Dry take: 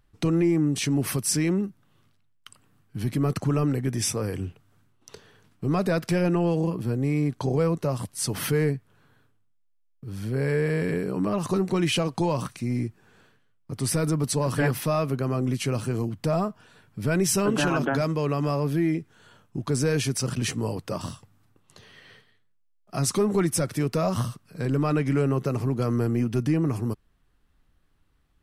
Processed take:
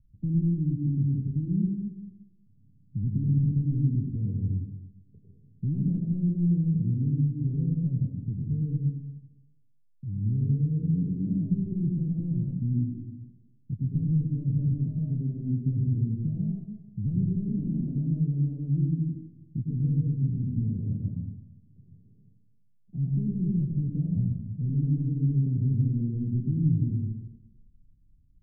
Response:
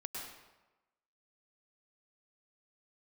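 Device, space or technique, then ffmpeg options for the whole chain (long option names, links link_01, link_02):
club heard from the street: -filter_complex "[0:a]alimiter=limit=-21dB:level=0:latency=1,lowpass=frequency=200:width=0.5412,lowpass=frequency=200:width=1.3066[link_01];[1:a]atrim=start_sample=2205[link_02];[link_01][link_02]afir=irnorm=-1:irlink=0,volume=8dB"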